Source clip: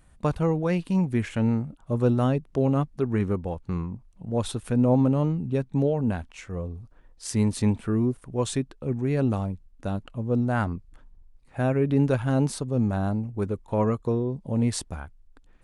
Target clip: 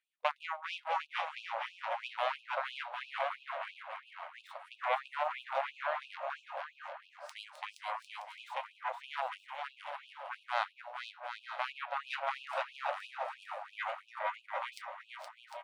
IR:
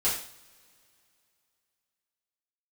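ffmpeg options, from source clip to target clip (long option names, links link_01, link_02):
-filter_complex "[0:a]aeval=exprs='0.316*(cos(1*acos(clip(val(0)/0.316,-1,1)))-cos(1*PI/2))+0.0224*(cos(3*acos(clip(val(0)/0.316,-1,1)))-cos(3*PI/2))+0.0447*(cos(7*acos(clip(val(0)/0.316,-1,1)))-cos(7*PI/2))':channel_layout=same,acrossover=split=590 3700:gain=0.0891 1 0.126[link_01][link_02][link_03];[link_01][link_02][link_03]amix=inputs=3:normalize=0,asplit=2[link_04][link_05];[link_05]adelay=448,lowpass=frequency=3100:poles=1,volume=-9.5dB,asplit=2[link_06][link_07];[link_07]adelay=448,lowpass=frequency=3100:poles=1,volume=0.54,asplit=2[link_08][link_09];[link_09]adelay=448,lowpass=frequency=3100:poles=1,volume=0.54,asplit=2[link_10][link_11];[link_11]adelay=448,lowpass=frequency=3100:poles=1,volume=0.54,asplit=2[link_12][link_13];[link_13]adelay=448,lowpass=frequency=3100:poles=1,volume=0.54,asplit=2[link_14][link_15];[link_15]adelay=448,lowpass=frequency=3100:poles=1,volume=0.54[link_16];[link_06][link_08][link_10][link_12][link_14][link_16]amix=inputs=6:normalize=0[link_17];[link_04][link_17]amix=inputs=2:normalize=0,flanger=delay=6.6:depth=5.6:regen=-75:speed=0.14:shape=sinusoidal,equalizer=frequency=1700:width=2.9:gain=-3.5,asplit=2[link_18][link_19];[link_19]aecho=0:1:470|752|921.2|1023|1084:0.631|0.398|0.251|0.158|0.1[link_20];[link_18][link_20]amix=inputs=2:normalize=0,afftfilt=real='re*gte(b*sr/1024,500*pow(2500/500,0.5+0.5*sin(2*PI*3*pts/sr)))':imag='im*gte(b*sr/1024,500*pow(2500/500,0.5+0.5*sin(2*PI*3*pts/sr)))':win_size=1024:overlap=0.75,volume=5.5dB"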